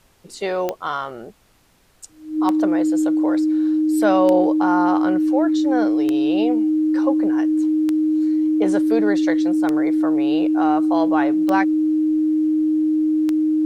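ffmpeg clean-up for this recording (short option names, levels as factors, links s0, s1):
-af "adeclick=t=4,bandreject=f=310:w=30,agate=range=0.0891:threshold=0.0355"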